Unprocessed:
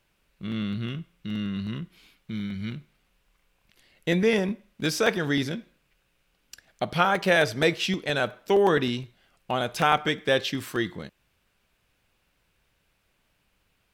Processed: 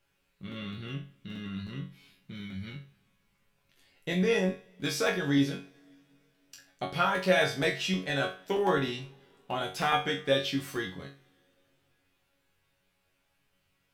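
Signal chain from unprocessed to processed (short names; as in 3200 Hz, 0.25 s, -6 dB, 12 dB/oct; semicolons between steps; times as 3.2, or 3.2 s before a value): resonator bank F#2 fifth, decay 0.32 s; two-slope reverb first 0.42 s, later 3.3 s, from -18 dB, DRR 18 dB; gain +7.5 dB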